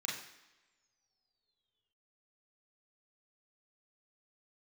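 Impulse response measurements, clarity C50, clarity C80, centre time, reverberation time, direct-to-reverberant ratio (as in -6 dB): 4.0 dB, 7.5 dB, 47 ms, no single decay rate, -4.0 dB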